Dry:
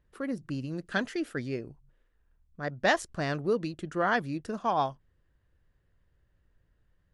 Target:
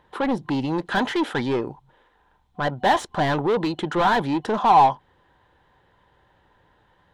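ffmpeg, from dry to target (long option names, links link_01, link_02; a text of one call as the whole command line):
ffmpeg -i in.wav -filter_complex "[0:a]asplit=2[link_01][link_02];[link_02]highpass=frequency=720:poles=1,volume=31dB,asoftclip=type=tanh:threshold=-10.5dB[link_03];[link_01][link_03]amix=inputs=2:normalize=0,lowpass=frequency=1200:poles=1,volume=-6dB,superequalizer=9b=3.16:13b=2.24,volume=-2dB" out.wav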